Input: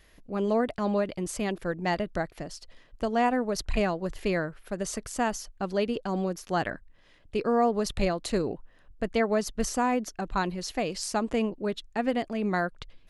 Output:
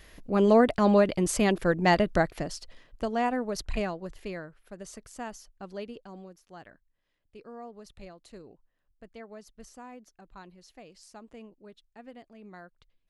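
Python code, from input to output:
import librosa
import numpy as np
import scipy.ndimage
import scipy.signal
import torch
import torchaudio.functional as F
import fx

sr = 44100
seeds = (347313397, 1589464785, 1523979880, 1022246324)

y = fx.gain(x, sr, db=fx.line((2.28, 6.0), (3.18, -3.0), (3.7, -3.0), (4.42, -11.0), (5.81, -11.0), (6.44, -20.0)))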